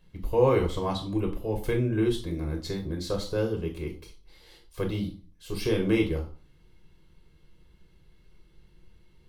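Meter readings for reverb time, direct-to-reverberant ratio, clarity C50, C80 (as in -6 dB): 0.40 s, 1.5 dB, 11.0 dB, 15.5 dB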